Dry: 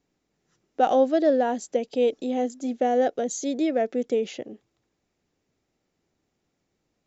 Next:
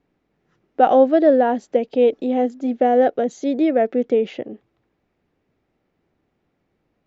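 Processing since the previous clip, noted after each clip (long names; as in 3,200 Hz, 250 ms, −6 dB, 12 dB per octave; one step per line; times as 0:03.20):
low-pass filter 2,500 Hz 12 dB per octave
level +6.5 dB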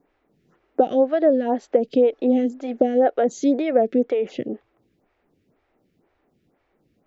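downward compressor 6 to 1, threshold −19 dBFS, peak gain reduction 10.5 dB
phaser with staggered stages 2 Hz
level +6.5 dB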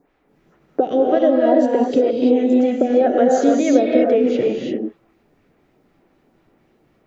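downward compressor, threshold −17 dBFS, peak gain reduction 6.5 dB
reverb whose tail is shaped and stops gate 370 ms rising, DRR −1.5 dB
level +4 dB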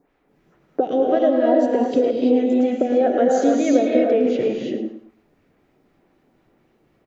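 repeating echo 108 ms, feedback 28%, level −11 dB
level −2.5 dB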